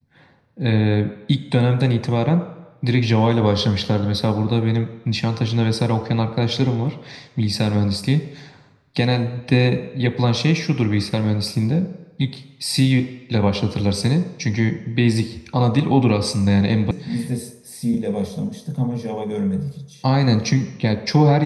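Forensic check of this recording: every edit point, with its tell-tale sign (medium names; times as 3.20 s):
16.91 s: sound stops dead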